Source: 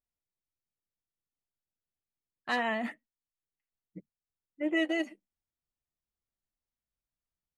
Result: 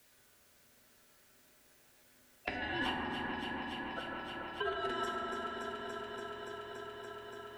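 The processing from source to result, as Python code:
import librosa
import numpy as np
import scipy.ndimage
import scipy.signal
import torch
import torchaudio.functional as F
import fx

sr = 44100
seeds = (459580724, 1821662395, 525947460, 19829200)

y = scipy.signal.sosfilt(scipy.signal.butter(16, 340.0, 'highpass', fs=sr, output='sos'), x)
y = fx.over_compress(y, sr, threshold_db=-38.0, ratio=-0.5)
y = y * np.sin(2.0 * np.pi * 1000.0 * np.arange(len(y)) / sr)
y = fx.echo_alternate(y, sr, ms=143, hz=2300.0, feedback_pct=87, wet_db=-8.0)
y = fx.rev_fdn(y, sr, rt60_s=2.5, lf_ratio=1.35, hf_ratio=0.25, size_ms=24.0, drr_db=-1.0)
y = fx.band_squash(y, sr, depth_pct=70)
y = F.gain(torch.from_numpy(y), 4.5).numpy()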